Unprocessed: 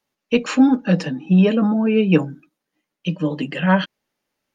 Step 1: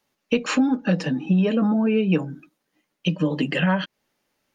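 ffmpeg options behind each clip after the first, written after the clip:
-af "acompressor=threshold=0.0708:ratio=4,volume=1.68"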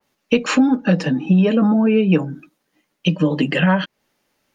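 -af "adynamicequalizer=threshold=0.01:dfrequency=2600:dqfactor=0.7:tfrequency=2600:tqfactor=0.7:attack=5:release=100:ratio=0.375:range=1.5:mode=cutabove:tftype=highshelf,volume=1.78"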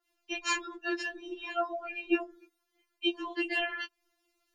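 -af "afftfilt=real='re*4*eq(mod(b,16),0)':imag='im*4*eq(mod(b,16),0)':win_size=2048:overlap=0.75,volume=0.501"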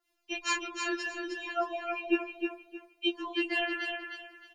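-af "aecho=1:1:310|620|930|1240:0.531|0.143|0.0387|0.0104"

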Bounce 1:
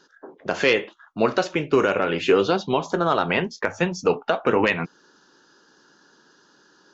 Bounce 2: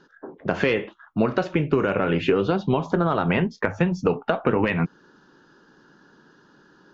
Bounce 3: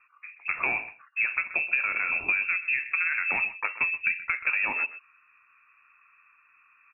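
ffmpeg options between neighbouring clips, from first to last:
-af "bass=f=250:g=10,treble=f=4000:g=-14,acompressor=threshold=0.126:ratio=6,volume=1.19"
-filter_complex "[0:a]lowpass=f=2400:t=q:w=0.5098,lowpass=f=2400:t=q:w=0.6013,lowpass=f=2400:t=q:w=0.9,lowpass=f=2400:t=q:w=2.563,afreqshift=-2800,asplit=2[s0][s1];[s1]adelay=128.3,volume=0.178,highshelf=f=4000:g=-2.89[s2];[s0][s2]amix=inputs=2:normalize=0,volume=0.501"

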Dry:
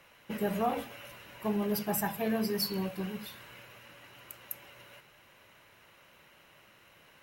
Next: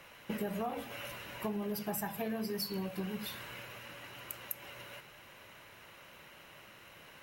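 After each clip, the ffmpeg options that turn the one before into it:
-af "acompressor=threshold=0.0112:ratio=6,volume=1.68"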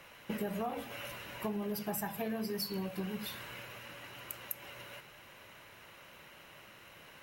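-af anull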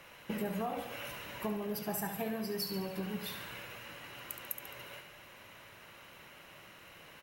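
-af "aecho=1:1:71|142|213|284|355|426:0.355|0.195|0.107|0.059|0.0325|0.0179"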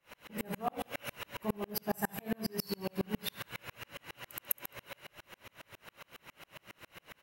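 -af "aeval=exprs='val(0)*pow(10,-38*if(lt(mod(-7.3*n/s,1),2*abs(-7.3)/1000),1-mod(-7.3*n/s,1)/(2*abs(-7.3)/1000),(mod(-7.3*n/s,1)-2*abs(-7.3)/1000)/(1-2*abs(-7.3)/1000))/20)':c=same,volume=2.82"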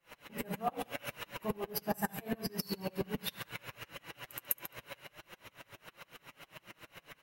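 -af "flanger=delay=5.7:depth=1.8:regen=-35:speed=1.5:shape=triangular,volume=1.5"

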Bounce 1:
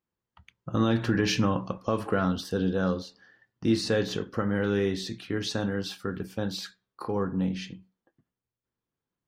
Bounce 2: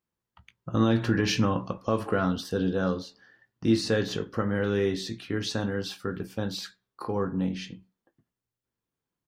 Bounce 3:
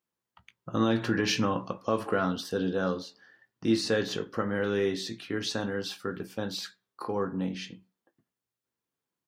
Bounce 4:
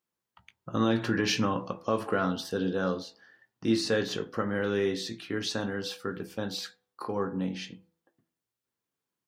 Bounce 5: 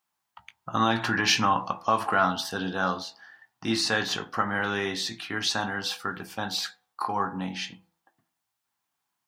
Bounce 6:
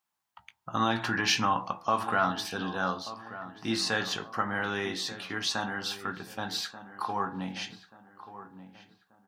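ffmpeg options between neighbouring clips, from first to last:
-filter_complex "[0:a]asplit=2[s0][s1];[s1]adelay=18,volume=0.237[s2];[s0][s2]amix=inputs=2:normalize=0"
-af "highpass=f=230:p=1"
-af "bandreject=f=82.52:t=h:w=4,bandreject=f=165.04:t=h:w=4,bandreject=f=247.56:t=h:w=4,bandreject=f=330.08:t=h:w=4,bandreject=f=412.6:t=h:w=4,bandreject=f=495.12:t=h:w=4,bandreject=f=577.64:t=h:w=4,bandreject=f=660.16:t=h:w=4,bandreject=f=742.68:t=h:w=4,bandreject=f=825.2:t=h:w=4,bandreject=f=907.72:t=h:w=4"
-af "lowshelf=f=620:t=q:w=3:g=-7,volume=2.11"
-filter_complex "[0:a]asplit=2[s0][s1];[s1]adelay=1184,lowpass=f=1700:p=1,volume=0.211,asplit=2[s2][s3];[s3]adelay=1184,lowpass=f=1700:p=1,volume=0.41,asplit=2[s4][s5];[s5]adelay=1184,lowpass=f=1700:p=1,volume=0.41,asplit=2[s6][s7];[s7]adelay=1184,lowpass=f=1700:p=1,volume=0.41[s8];[s0][s2][s4][s6][s8]amix=inputs=5:normalize=0,volume=0.668"

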